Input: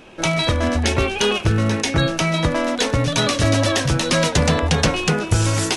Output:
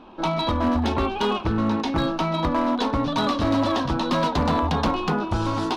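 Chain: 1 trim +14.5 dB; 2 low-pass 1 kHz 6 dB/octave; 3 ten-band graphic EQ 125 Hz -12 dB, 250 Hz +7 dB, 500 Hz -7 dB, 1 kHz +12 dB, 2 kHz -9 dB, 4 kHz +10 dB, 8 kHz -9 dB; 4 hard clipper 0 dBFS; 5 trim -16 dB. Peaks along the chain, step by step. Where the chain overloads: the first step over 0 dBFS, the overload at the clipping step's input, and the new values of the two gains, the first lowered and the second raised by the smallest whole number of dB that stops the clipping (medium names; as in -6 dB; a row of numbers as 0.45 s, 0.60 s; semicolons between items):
+11.0 dBFS, +8.5 dBFS, +8.5 dBFS, 0.0 dBFS, -16.0 dBFS; step 1, 8.5 dB; step 1 +5.5 dB, step 5 -7 dB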